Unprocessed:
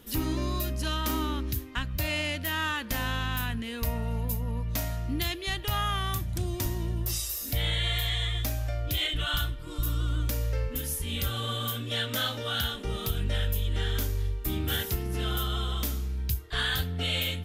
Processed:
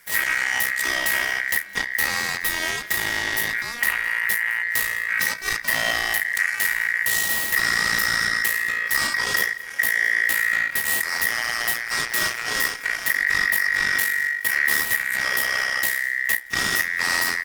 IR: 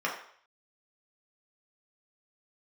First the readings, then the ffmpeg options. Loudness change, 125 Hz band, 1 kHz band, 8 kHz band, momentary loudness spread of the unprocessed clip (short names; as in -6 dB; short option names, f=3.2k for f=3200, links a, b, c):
+9.0 dB, -15.0 dB, +4.5 dB, +11.5 dB, 4 LU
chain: -af "bass=f=250:g=3,treble=f=4k:g=8,acontrast=37,flanger=delay=8.9:depth=6.5:regen=76:speed=0.18:shape=triangular,aeval=exprs='0.299*(cos(1*acos(clip(val(0)/0.299,-1,1)))-cos(1*PI/2))+0.0944*(cos(8*acos(clip(val(0)/0.299,-1,1)))-cos(8*PI/2))':c=same,aeval=exprs='val(0)*sin(2*PI*1900*n/s)':c=same,aecho=1:1:210|420|630|840:0.0841|0.0446|0.0236|0.0125"